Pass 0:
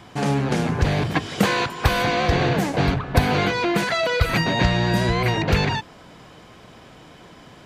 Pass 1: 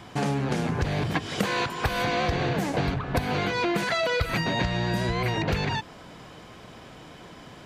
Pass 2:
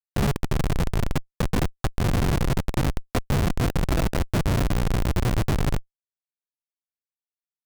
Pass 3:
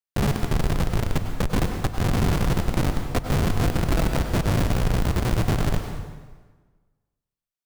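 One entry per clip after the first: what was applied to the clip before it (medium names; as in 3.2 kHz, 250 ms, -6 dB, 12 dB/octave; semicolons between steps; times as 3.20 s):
compression 5:1, threshold -23 dBFS, peak gain reduction 12 dB
two-band feedback delay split 1.9 kHz, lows 132 ms, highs 379 ms, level -13.5 dB; Schmitt trigger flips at -20 dBFS; trim +7 dB
plate-style reverb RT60 1.4 s, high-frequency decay 0.8×, pre-delay 85 ms, DRR 5 dB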